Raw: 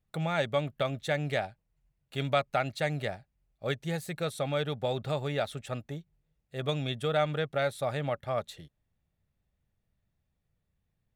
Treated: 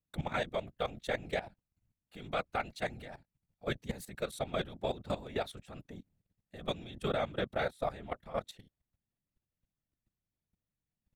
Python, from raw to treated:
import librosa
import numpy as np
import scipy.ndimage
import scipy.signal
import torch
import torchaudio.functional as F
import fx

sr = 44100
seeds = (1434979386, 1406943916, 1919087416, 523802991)

y = fx.whisperise(x, sr, seeds[0])
y = fx.level_steps(y, sr, step_db=15)
y = y * librosa.db_to_amplitude(-1.5)